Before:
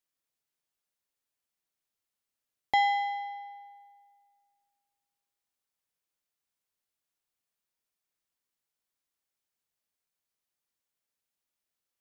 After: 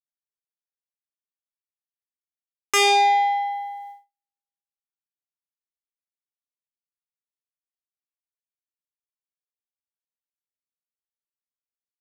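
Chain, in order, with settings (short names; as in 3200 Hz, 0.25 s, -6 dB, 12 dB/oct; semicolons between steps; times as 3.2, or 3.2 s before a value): feedback echo 0.141 s, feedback 37%, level -22.5 dB; gate -57 dBFS, range -48 dB; sine folder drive 13 dB, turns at -14.5 dBFS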